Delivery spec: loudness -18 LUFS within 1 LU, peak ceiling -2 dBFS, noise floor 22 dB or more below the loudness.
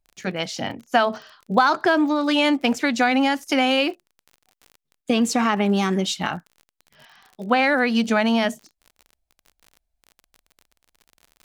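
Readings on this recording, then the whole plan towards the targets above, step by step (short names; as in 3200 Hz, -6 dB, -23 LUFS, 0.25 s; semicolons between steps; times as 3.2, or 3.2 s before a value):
ticks 41/s; loudness -21.0 LUFS; peak -3.5 dBFS; loudness target -18.0 LUFS
-> de-click; gain +3 dB; limiter -2 dBFS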